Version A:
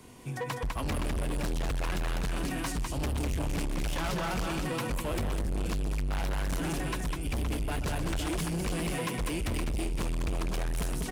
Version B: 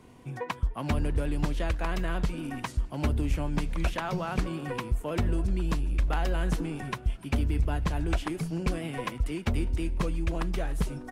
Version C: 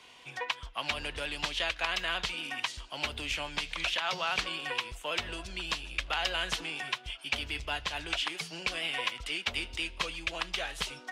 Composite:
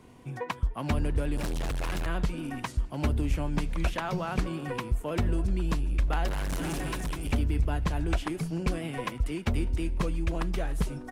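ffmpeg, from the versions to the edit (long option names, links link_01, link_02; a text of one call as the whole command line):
ffmpeg -i take0.wav -i take1.wav -filter_complex "[0:a]asplit=2[link_01][link_02];[1:a]asplit=3[link_03][link_04][link_05];[link_03]atrim=end=1.372[link_06];[link_01]atrim=start=1.368:end=2.062[link_07];[link_04]atrim=start=2.058:end=6.282[link_08];[link_02]atrim=start=6.278:end=7.322[link_09];[link_05]atrim=start=7.318[link_10];[link_06][link_07]acrossfade=duration=0.004:curve1=hsin:curve2=hsin[link_11];[link_11][link_08]acrossfade=duration=0.004:curve1=hsin:curve2=hsin[link_12];[link_12][link_09]acrossfade=duration=0.004:curve1=hsin:curve2=hsin[link_13];[link_13][link_10]acrossfade=duration=0.004:curve1=hsin:curve2=hsin" out.wav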